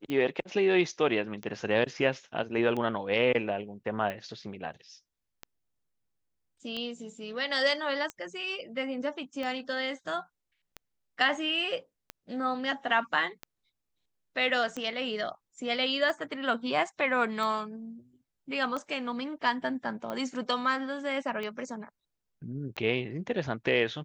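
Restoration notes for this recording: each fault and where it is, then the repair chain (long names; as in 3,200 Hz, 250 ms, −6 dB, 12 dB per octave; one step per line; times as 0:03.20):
scratch tick 45 rpm −22 dBFS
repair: click removal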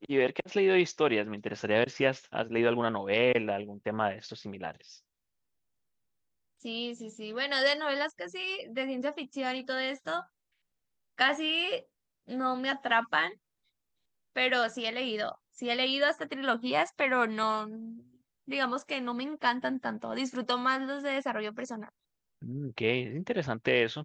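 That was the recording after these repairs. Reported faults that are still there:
none of them is left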